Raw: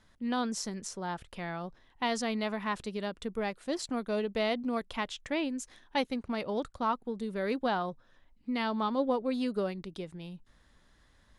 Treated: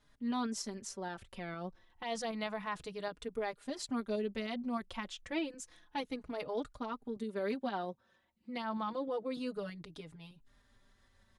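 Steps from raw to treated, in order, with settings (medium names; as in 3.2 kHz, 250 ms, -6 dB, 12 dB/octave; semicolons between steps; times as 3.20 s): 7.16–9.37 s: high-pass 110 Hz 12 dB/octave; peak limiter -24 dBFS, peak gain reduction 7 dB; tremolo saw up 6.5 Hz, depth 30%; endless flanger 4.4 ms -0.3 Hz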